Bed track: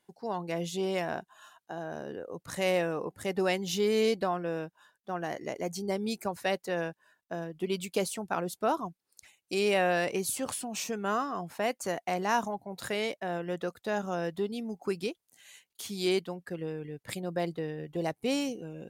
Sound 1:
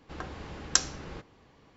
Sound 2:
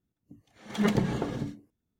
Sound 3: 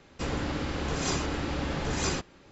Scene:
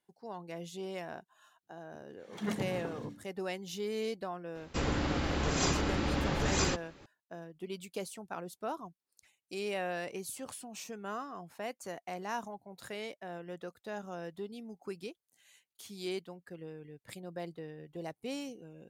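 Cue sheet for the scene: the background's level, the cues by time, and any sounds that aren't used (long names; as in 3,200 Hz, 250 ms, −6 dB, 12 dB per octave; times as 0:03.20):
bed track −9.5 dB
0:01.63: mix in 2 −9.5 dB + high-pass filter 84 Hz
0:04.55: mix in 3 −0.5 dB
not used: 1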